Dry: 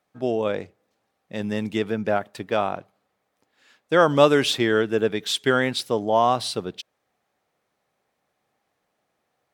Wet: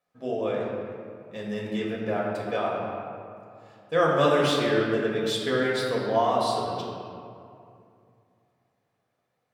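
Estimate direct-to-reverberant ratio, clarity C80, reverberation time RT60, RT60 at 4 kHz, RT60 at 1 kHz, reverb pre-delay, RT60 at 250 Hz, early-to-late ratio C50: −4.5 dB, 1.5 dB, 2.5 s, 1.3 s, 2.5 s, 4 ms, 2.8 s, 0.0 dB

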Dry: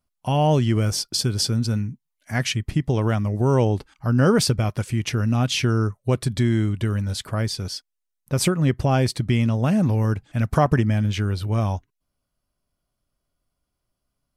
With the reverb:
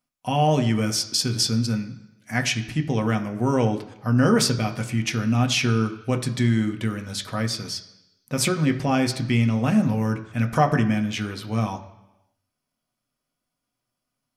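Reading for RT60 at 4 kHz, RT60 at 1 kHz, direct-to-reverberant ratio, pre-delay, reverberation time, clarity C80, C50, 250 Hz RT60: 1.0 s, 0.95 s, 5.0 dB, 3 ms, 1.0 s, 14.5 dB, 12.5 dB, 0.95 s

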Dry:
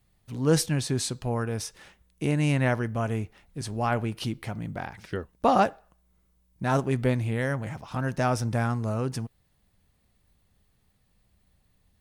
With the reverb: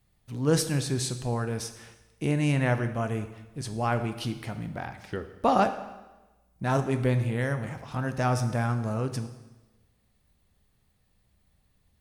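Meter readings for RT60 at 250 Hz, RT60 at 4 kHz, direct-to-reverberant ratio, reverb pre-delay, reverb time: 1.2 s, 1.0 s, 8.5 dB, 6 ms, 1.1 s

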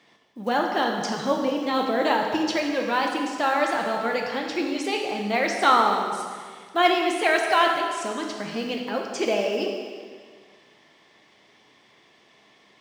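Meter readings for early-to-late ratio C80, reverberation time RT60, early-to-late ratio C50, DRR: 4.5 dB, 1.8 s, 3.0 dB, 1.0 dB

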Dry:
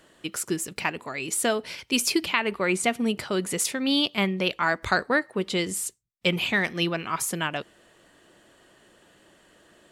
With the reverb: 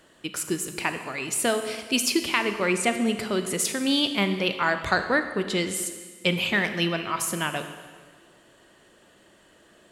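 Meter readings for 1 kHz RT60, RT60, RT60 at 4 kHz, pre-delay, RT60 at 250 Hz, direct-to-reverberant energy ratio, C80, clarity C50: 1.6 s, 1.6 s, 1.5 s, 27 ms, 1.7 s, 8.0 dB, 10.0 dB, 9.0 dB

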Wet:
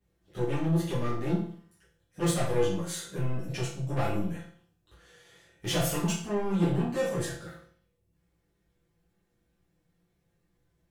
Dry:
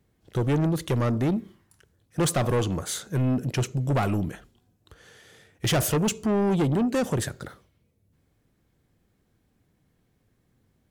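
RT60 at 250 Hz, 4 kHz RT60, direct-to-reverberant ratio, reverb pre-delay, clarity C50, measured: 0.50 s, 0.50 s, −10.5 dB, 6 ms, 4.0 dB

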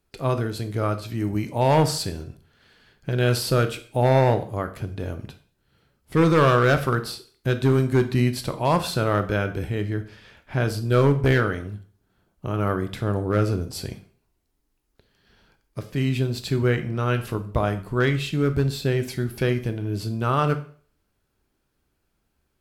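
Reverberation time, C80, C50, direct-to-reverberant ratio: 0.45 s, 17.5 dB, 13.5 dB, 9.0 dB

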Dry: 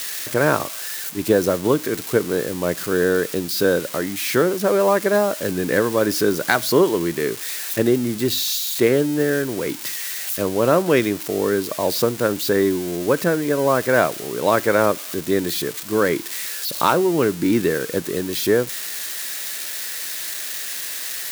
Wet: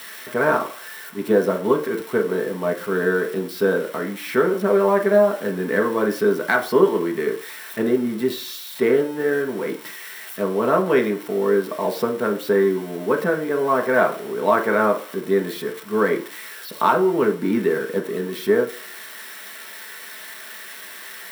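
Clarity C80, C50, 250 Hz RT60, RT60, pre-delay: 17.0 dB, 12.5 dB, 0.40 s, 0.45 s, 3 ms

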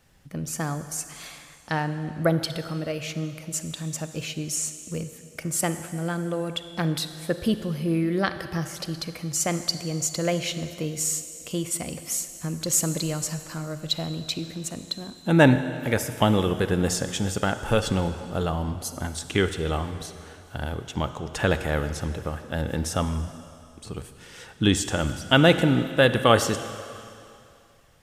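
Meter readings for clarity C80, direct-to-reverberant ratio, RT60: 11.5 dB, 10.0 dB, 2.5 s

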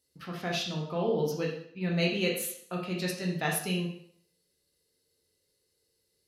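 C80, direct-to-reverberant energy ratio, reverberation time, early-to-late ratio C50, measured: 8.0 dB, −2.5 dB, 0.65 s, 4.5 dB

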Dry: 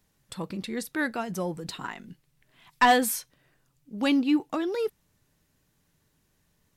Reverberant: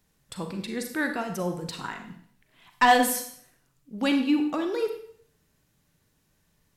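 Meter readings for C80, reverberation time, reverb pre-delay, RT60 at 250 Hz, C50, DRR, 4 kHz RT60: 10.5 dB, 0.60 s, 35 ms, 0.60 s, 7.0 dB, 5.0 dB, 0.55 s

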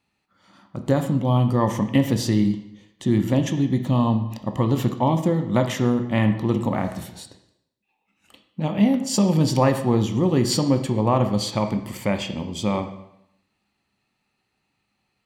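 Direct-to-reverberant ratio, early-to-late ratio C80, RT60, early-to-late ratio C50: 6.0 dB, 11.5 dB, 0.80 s, 9.5 dB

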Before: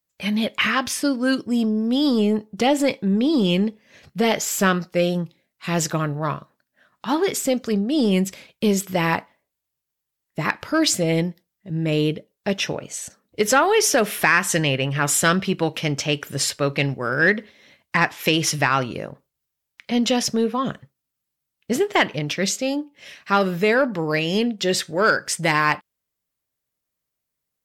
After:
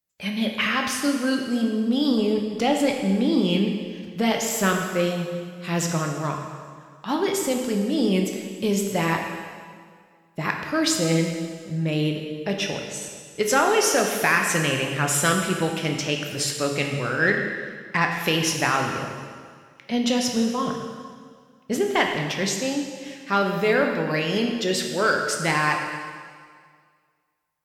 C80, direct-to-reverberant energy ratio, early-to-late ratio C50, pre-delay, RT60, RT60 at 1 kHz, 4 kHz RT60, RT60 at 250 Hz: 5.5 dB, 2.0 dB, 4.0 dB, 7 ms, 1.9 s, 1.9 s, 1.7 s, 2.0 s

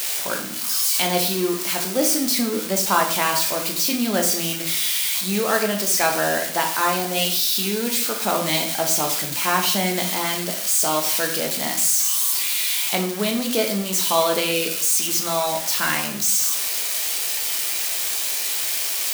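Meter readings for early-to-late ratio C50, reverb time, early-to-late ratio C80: 8.0 dB, 0.60 s, 11.5 dB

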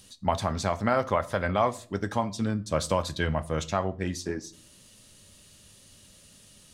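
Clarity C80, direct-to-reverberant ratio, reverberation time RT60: 25.0 dB, 11.5 dB, 0.45 s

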